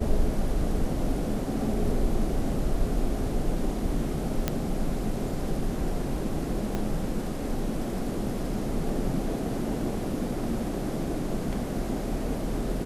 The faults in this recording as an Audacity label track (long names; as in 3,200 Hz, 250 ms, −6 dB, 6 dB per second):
4.480000	4.480000	click −10 dBFS
6.750000	6.750000	click −17 dBFS